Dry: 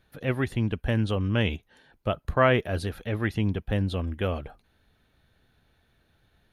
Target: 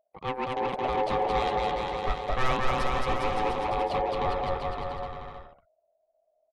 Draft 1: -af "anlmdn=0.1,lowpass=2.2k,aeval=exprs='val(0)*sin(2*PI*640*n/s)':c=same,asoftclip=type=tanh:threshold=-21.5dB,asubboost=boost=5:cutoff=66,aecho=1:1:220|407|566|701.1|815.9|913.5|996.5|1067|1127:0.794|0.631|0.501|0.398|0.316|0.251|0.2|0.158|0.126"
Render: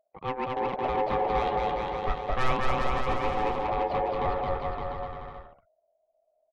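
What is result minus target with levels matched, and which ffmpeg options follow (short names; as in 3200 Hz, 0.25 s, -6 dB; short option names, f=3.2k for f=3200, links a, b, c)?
8000 Hz band -5.0 dB
-af "anlmdn=0.1,lowpass=8.7k,aeval=exprs='val(0)*sin(2*PI*640*n/s)':c=same,asoftclip=type=tanh:threshold=-21.5dB,asubboost=boost=5:cutoff=66,aecho=1:1:220|407|566|701.1|815.9|913.5|996.5|1067|1127:0.794|0.631|0.501|0.398|0.316|0.251|0.2|0.158|0.126"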